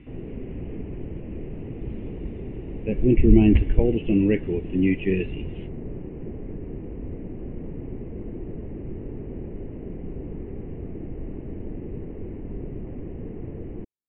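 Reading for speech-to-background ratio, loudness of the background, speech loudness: 15.0 dB, -36.5 LUFS, -21.5 LUFS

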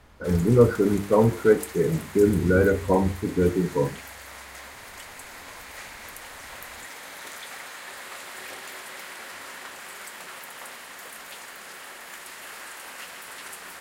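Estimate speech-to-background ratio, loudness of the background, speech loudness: 17.0 dB, -39.0 LUFS, -22.0 LUFS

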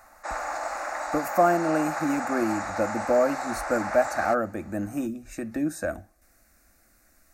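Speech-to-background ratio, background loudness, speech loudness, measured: 5.0 dB, -32.0 LUFS, -27.0 LUFS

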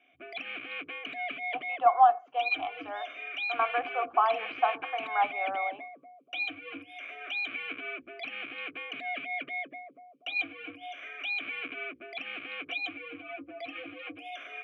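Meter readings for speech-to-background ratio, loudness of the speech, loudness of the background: 7.5 dB, -28.5 LUFS, -36.0 LUFS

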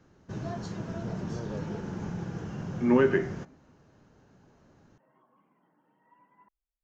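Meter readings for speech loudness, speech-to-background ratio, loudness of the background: -26.0 LUFS, 11.0 dB, -37.0 LUFS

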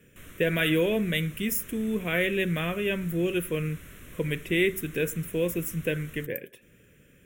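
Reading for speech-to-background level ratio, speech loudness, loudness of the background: 19.5 dB, -28.0 LUFS, -47.5 LUFS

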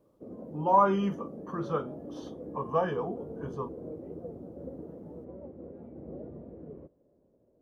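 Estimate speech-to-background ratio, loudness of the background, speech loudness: 14.5 dB, -44.0 LUFS, -29.5 LUFS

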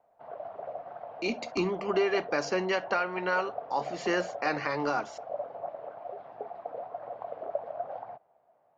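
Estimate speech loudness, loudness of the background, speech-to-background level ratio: -30.5 LUFS, -40.5 LUFS, 10.0 dB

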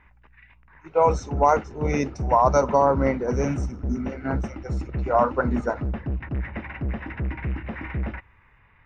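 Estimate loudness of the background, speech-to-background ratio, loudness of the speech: -31.5 LUFS, 8.0 dB, -23.5 LUFS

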